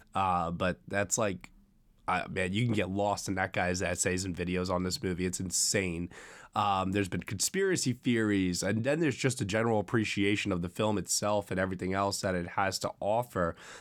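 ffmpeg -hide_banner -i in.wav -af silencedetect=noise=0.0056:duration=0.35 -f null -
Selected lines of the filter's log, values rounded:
silence_start: 1.45
silence_end: 2.08 | silence_duration: 0.63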